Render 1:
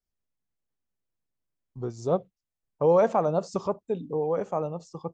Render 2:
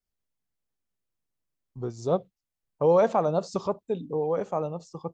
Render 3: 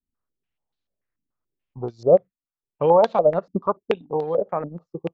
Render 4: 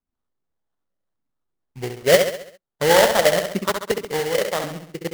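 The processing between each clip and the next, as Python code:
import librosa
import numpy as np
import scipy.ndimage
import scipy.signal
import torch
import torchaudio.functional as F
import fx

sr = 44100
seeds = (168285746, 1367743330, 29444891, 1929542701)

y1 = fx.dynamic_eq(x, sr, hz=3900.0, q=2.1, threshold_db=-57.0, ratio=4.0, max_db=6)
y2 = fx.transient(y1, sr, attack_db=3, sustain_db=-10)
y2 = fx.filter_held_lowpass(y2, sr, hz=6.9, low_hz=270.0, high_hz=4000.0)
y3 = fx.echo_feedback(y2, sr, ms=67, feedback_pct=49, wet_db=-6.5)
y3 = fx.sample_hold(y3, sr, seeds[0], rate_hz=2500.0, jitter_pct=20)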